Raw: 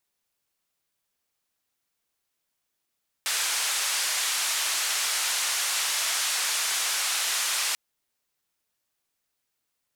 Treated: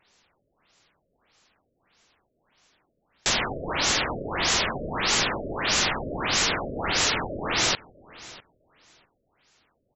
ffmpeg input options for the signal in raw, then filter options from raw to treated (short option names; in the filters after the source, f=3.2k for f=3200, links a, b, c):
-f lavfi -i "anoisesrc=c=white:d=4.49:r=44100:seed=1,highpass=f=1000,lowpass=f=9100,volume=-17.9dB"
-af "aeval=exprs='0.178*sin(PI/2*7.08*val(0)/0.178)':c=same,aecho=1:1:652|1304:0.0944|0.016,afftfilt=real='re*lt(b*sr/1024,640*pow(7900/640,0.5+0.5*sin(2*PI*1.6*pts/sr)))':imag='im*lt(b*sr/1024,640*pow(7900/640,0.5+0.5*sin(2*PI*1.6*pts/sr)))':win_size=1024:overlap=0.75"